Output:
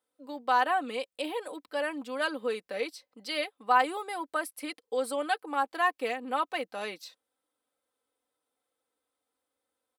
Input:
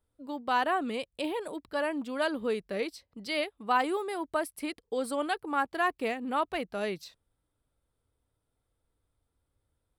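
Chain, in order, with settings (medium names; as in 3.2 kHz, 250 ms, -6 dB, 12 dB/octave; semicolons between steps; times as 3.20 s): high-pass 410 Hz 12 dB/octave; comb 3.9 ms, depth 60%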